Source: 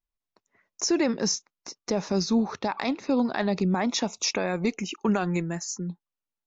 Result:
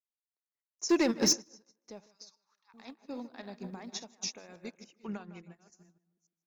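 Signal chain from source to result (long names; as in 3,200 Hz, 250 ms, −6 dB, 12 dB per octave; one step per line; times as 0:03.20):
delay that plays each chunk backwards 285 ms, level −9 dB
high-shelf EQ 3,900 Hz +8 dB
0:00.89–0:01.33: leveller curve on the samples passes 2
0:02.06–0:02.74: Butterworth high-pass 920 Hz 72 dB per octave
tape delay 153 ms, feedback 52%, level −8.5 dB, low-pass 2,200 Hz
bit reduction 10 bits
0:05.04–0:05.71: low-pass filter 5,400 Hz → 3,500 Hz 12 dB per octave
expander for the loud parts 2.5 to 1, over −37 dBFS
level −6.5 dB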